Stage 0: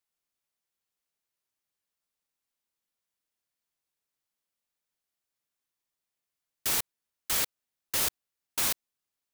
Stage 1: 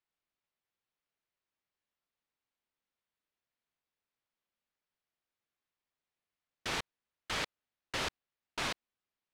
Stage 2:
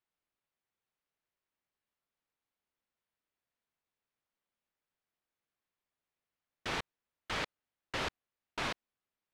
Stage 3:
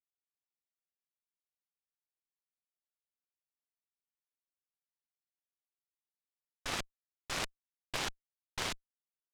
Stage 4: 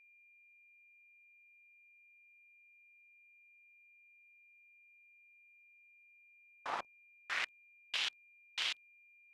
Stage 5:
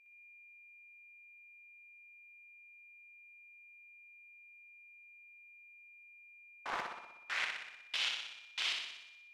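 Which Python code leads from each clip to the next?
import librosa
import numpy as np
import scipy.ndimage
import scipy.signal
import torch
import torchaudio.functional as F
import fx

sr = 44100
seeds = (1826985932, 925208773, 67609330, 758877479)

y1 = scipy.signal.sosfilt(scipy.signal.butter(2, 3400.0, 'lowpass', fs=sr, output='sos'), x)
y2 = fx.high_shelf(y1, sr, hz=4600.0, db=-9.5)
y2 = y2 * 10.0 ** (1.0 / 20.0)
y3 = fx.cheby_harmonics(y2, sr, harmonics=(3, 6), levels_db=(-9, -15), full_scale_db=-23.0)
y3 = y3 * 10.0 ** (4.5 / 20.0)
y4 = fx.quant_dither(y3, sr, seeds[0], bits=10, dither='none')
y4 = fx.filter_sweep_bandpass(y4, sr, from_hz=940.0, to_hz=3000.0, start_s=6.9, end_s=7.66, q=2.2)
y4 = y4 + 10.0 ** (-68.0 / 20.0) * np.sin(2.0 * np.pi * 2400.0 * np.arange(len(y4)) / sr)
y4 = y4 * 10.0 ** (6.0 / 20.0)
y5 = fx.room_flutter(y4, sr, wall_m=10.5, rt60_s=0.9)
y5 = fx.doppler_dist(y5, sr, depth_ms=0.43)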